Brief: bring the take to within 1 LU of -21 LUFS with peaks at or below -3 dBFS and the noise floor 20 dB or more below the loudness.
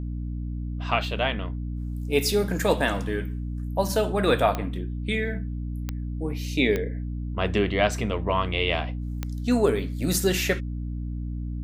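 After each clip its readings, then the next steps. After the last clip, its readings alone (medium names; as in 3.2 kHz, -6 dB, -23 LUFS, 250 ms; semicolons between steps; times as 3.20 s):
clicks found 4; hum 60 Hz; highest harmonic 300 Hz; hum level -28 dBFS; loudness -26.5 LUFS; peak level -7.0 dBFS; loudness target -21.0 LUFS
-> de-click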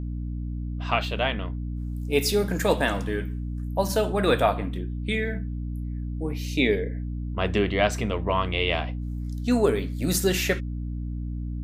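clicks found 0; hum 60 Hz; highest harmonic 300 Hz; hum level -28 dBFS
-> de-hum 60 Hz, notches 5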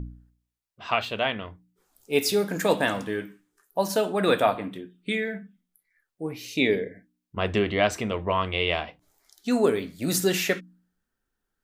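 hum not found; loudness -26.0 LUFS; peak level -7.0 dBFS; loudness target -21.0 LUFS
-> trim +5 dB; peak limiter -3 dBFS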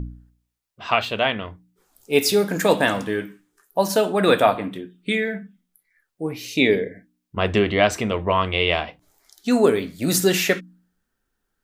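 loudness -21.0 LUFS; peak level -3.0 dBFS; noise floor -78 dBFS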